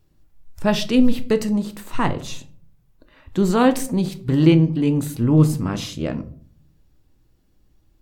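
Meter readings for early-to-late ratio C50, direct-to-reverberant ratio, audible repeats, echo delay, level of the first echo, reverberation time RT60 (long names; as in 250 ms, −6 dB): 18.0 dB, 9.5 dB, no echo audible, no echo audible, no echo audible, 0.50 s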